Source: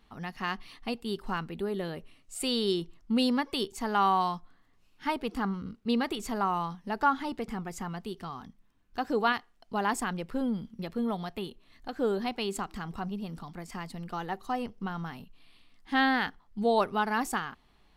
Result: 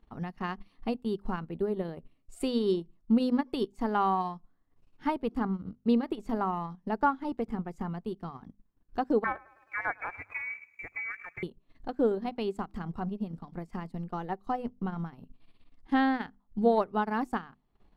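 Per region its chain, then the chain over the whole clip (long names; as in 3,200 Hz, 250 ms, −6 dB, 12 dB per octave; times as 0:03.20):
0:09.24–0:11.43: voice inversion scrambler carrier 2,500 Hz + feedback echo at a low word length 105 ms, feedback 55%, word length 9 bits, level −13 dB
whole clip: tilt shelving filter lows +7.5 dB, about 1,300 Hz; mains-hum notches 50/100/150/200/250 Hz; transient designer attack +4 dB, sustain −11 dB; level −5 dB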